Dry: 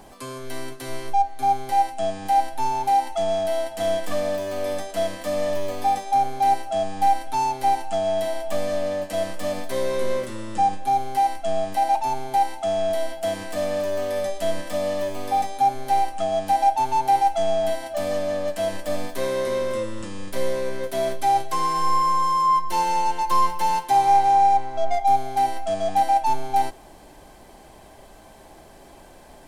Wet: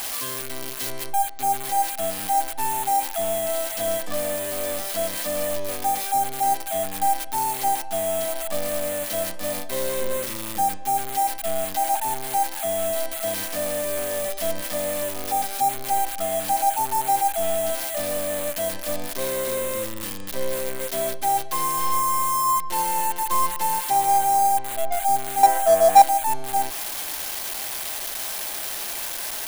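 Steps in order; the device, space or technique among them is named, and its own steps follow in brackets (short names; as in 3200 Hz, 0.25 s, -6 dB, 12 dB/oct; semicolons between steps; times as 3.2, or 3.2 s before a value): 25.43–26.02 band shelf 920 Hz +12 dB 2.6 oct; budget class-D amplifier (switching dead time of 0.088 ms; switching spikes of -10 dBFS); gain -3 dB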